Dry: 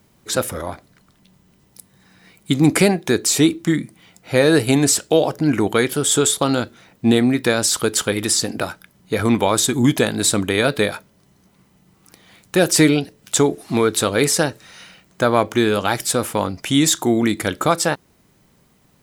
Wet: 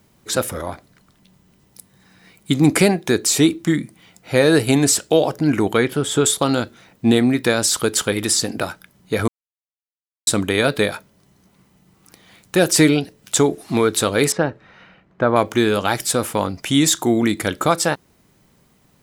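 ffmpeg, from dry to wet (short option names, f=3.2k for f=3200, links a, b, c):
-filter_complex "[0:a]asettb=1/sr,asplit=3[a][b][c];[a]atrim=end=5.774[d];[b]atrim=start=5.77:end=6.26,asetpts=PTS-STARTPTS,afade=t=in:d=0.004:c=qsin,afade=t=out:st=0.486:d=0.004:c=qsin,bass=f=250:g=2,treble=f=4k:g=-10[e];[c]atrim=start=6.256[f];[d][e]acrossfade=d=0.004:c1=hsin:c2=qsin[g];[g][f]acrossfade=d=0.004:c1=qsin:c2=hsin,asettb=1/sr,asplit=3[h][i][j];[h]atrim=end=14.324[k];[i]atrim=start=14.32:end=15.36,asetpts=PTS-STARTPTS,afade=t=in:d=0.004:c=qsin,afade=t=out:st=1.036:d=0.004:c=qsin,lowpass=1.8k[l];[j]atrim=start=15.356[m];[k][l]acrossfade=d=0.004:c1=hsin:c2=qsin[n];[n][m]acrossfade=d=0.004:c1=qsin:c2=hsin,asplit=3[o][p][q];[o]atrim=end=9.28,asetpts=PTS-STARTPTS,afade=t=out:st=9.276:d=0.004:c=hsin[r];[p]atrim=start=9.28:end=10.27,asetpts=PTS-STARTPTS,volume=0[s];[q]atrim=start=10.27,asetpts=PTS-STARTPTS,afade=t=in:d=0.004:c=hsin[t];[r][s][t]concat=n=3:v=0:a=1"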